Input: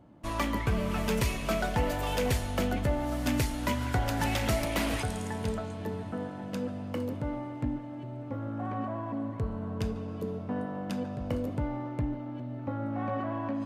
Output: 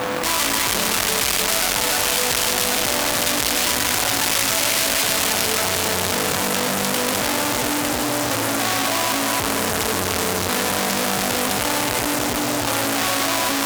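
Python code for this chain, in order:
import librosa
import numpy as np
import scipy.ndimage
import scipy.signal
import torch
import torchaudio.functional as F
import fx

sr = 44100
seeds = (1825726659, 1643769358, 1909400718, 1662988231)

y = scipy.ndimage.median_filter(x, 5, mode='constant')
y = fx.peak_eq(y, sr, hz=150.0, db=8.5, octaves=0.2, at=(5.32, 6.79))
y = fx.echo_feedback(y, sr, ms=302, feedback_pct=52, wet_db=-5.5)
y = y + 10.0 ** (-53.0 / 20.0) * np.sin(2.0 * np.pi * 500.0 * np.arange(len(y)) / sr)
y = fx.fuzz(y, sr, gain_db=53.0, gate_db=-54.0)
y = fx.riaa(y, sr, side='recording')
y = np.repeat(y[::2], 2)[:len(y)]
y = fx.env_flatten(y, sr, amount_pct=70)
y = F.gain(torch.from_numpy(y), -10.5).numpy()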